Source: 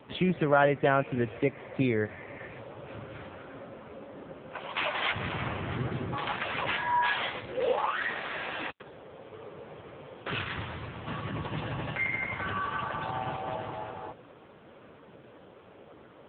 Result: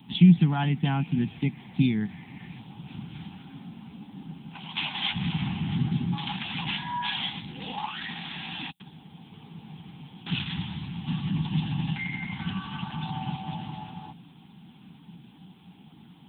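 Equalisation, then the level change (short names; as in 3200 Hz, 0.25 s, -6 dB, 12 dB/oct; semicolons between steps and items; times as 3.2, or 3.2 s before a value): EQ curve 110 Hz 0 dB, 170 Hz +15 dB, 270 Hz +4 dB, 570 Hz -27 dB, 800 Hz +1 dB, 1200 Hz -12 dB, 1900 Hz -7 dB, 3500 Hz +9 dB, 5900 Hz -1 dB, 8400 Hz +15 dB; 0.0 dB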